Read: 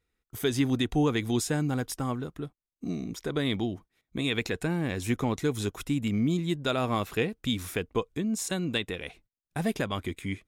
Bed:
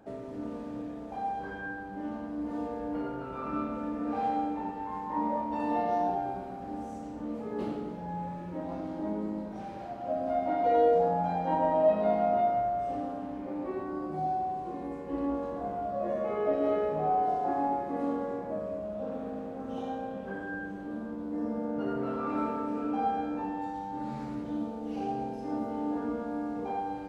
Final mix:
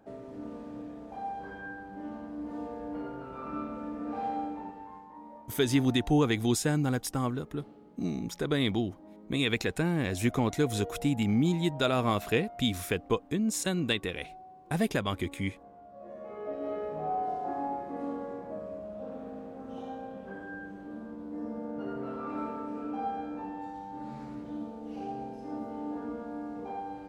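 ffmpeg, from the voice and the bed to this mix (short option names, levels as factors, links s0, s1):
-filter_complex "[0:a]adelay=5150,volume=1.06[s0];[1:a]volume=3.16,afade=t=out:st=4.44:d=0.74:silence=0.188365,afade=t=in:st=15.89:d=1.25:silence=0.211349[s1];[s0][s1]amix=inputs=2:normalize=0"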